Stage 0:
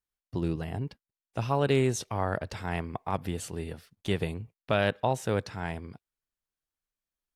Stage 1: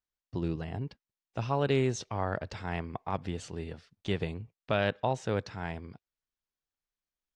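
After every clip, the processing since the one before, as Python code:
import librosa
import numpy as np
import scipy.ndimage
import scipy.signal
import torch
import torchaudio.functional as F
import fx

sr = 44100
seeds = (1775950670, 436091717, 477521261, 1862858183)

y = scipy.signal.sosfilt(scipy.signal.butter(4, 6800.0, 'lowpass', fs=sr, output='sos'), x)
y = y * librosa.db_to_amplitude(-2.5)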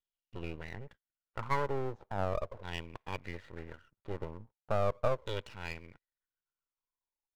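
y = fx.filter_lfo_lowpass(x, sr, shape='saw_down', hz=0.38, low_hz=520.0, high_hz=3400.0, q=6.4)
y = y + 0.5 * np.pad(y, (int(2.1 * sr / 1000.0), 0))[:len(y)]
y = np.maximum(y, 0.0)
y = y * librosa.db_to_amplitude(-6.5)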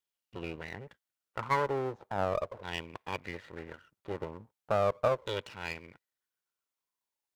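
y = fx.highpass(x, sr, hz=180.0, slope=6)
y = y * librosa.db_to_amplitude(4.0)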